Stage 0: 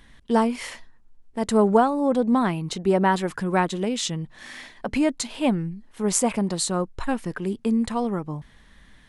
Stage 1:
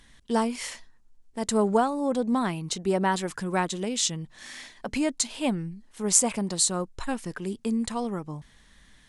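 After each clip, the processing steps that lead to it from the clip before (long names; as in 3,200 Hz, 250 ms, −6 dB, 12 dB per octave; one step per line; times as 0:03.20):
parametric band 7,200 Hz +9.5 dB 1.8 octaves
level −5 dB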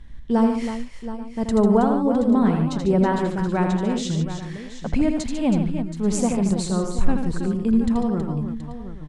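RIAA equalisation playback
multi-tap delay 81/146/322/725/835 ms −6/−9.5/−9.5/−12.5/−19 dB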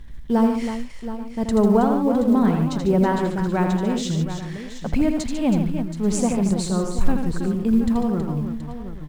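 mu-law and A-law mismatch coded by mu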